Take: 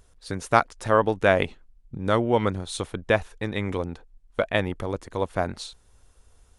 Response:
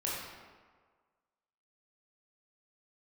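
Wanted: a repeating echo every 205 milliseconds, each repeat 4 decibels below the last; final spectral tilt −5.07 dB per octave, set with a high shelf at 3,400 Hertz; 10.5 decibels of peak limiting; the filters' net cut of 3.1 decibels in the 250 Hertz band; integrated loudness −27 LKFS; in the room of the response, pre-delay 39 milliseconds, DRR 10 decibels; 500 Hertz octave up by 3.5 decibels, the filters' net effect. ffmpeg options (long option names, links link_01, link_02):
-filter_complex "[0:a]equalizer=frequency=250:width_type=o:gain=-6.5,equalizer=frequency=500:width_type=o:gain=5.5,highshelf=frequency=3400:gain=3,alimiter=limit=-10.5dB:level=0:latency=1,aecho=1:1:205|410|615|820|1025|1230|1435|1640|1845:0.631|0.398|0.25|0.158|0.0994|0.0626|0.0394|0.0249|0.0157,asplit=2[link_01][link_02];[1:a]atrim=start_sample=2205,adelay=39[link_03];[link_02][link_03]afir=irnorm=-1:irlink=0,volume=-15dB[link_04];[link_01][link_04]amix=inputs=2:normalize=0,volume=-3dB"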